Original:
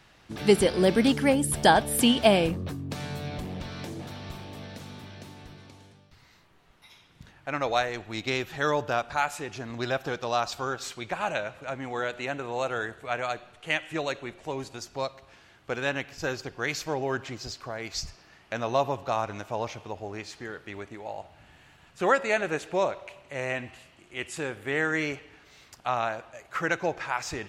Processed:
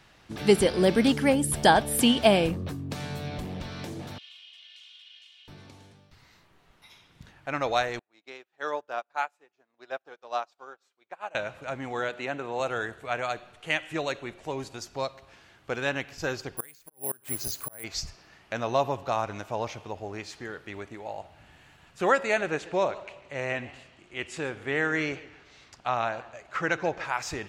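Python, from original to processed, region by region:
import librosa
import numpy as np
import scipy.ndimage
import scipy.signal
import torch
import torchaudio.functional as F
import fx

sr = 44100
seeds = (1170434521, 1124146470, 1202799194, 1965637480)

y = fx.chain(x, sr, fx.law_mismatch(coded='mu'),
    fx.ladder_bandpass(hz=3200.0, resonance_pct=75),
    fx.comb(ms=2.8, depth=0.79), at=(4.18, 5.48))
y = fx.chain(y, sr, fx.highpass(hz=440.0, slope=12),
    fx.high_shelf(hz=2500.0, db=-8.5),
    fx.upward_expand(threshold_db=-48.0, expansion=2.5), at=(7.99, 11.35))
y = fx.chain(y, sr, fx.highpass(hz=130.0, slope=12),
    fx.high_shelf(hz=5400.0, db=-7.0), at=(12.09, 12.6))
y = fx.chain(y, sr, fx.auto_swell(attack_ms=442.0),
    fx.gate_flip(shuts_db=-24.0, range_db=-26),
    fx.resample_bad(factor=4, down='filtered', up='zero_stuff'), at=(16.57, 17.84))
y = fx.chain(y, sr, fx.lowpass(hz=6800.0, slope=12),
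    fx.echo_warbled(ms=142, feedback_pct=33, rate_hz=2.8, cents=177, wet_db=-19.0), at=(22.46, 27.04))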